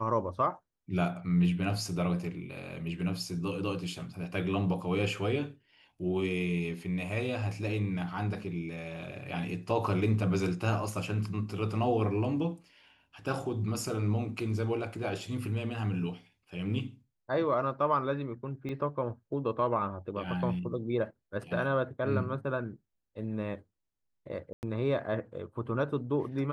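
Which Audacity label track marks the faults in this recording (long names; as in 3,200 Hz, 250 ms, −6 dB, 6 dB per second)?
18.690000	18.690000	drop-out 2.9 ms
24.530000	24.630000	drop-out 99 ms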